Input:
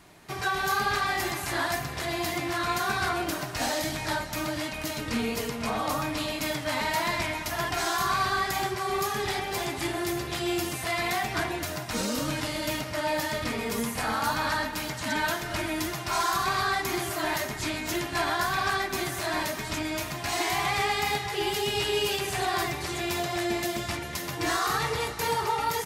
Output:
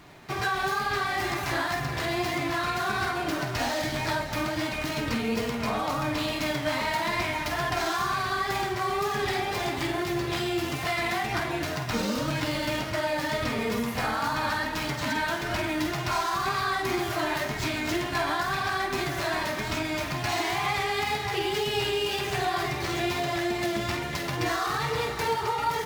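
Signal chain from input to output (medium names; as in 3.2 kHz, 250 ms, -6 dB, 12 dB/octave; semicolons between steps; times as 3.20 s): median filter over 5 samples; compression, threshold -29 dBFS, peak gain reduction 7 dB; flange 1.2 Hz, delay 6.5 ms, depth 2.9 ms, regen +73%; wow and flutter 28 cents; on a send: flutter echo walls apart 8.4 m, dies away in 0.3 s; on the sum: trim +8.5 dB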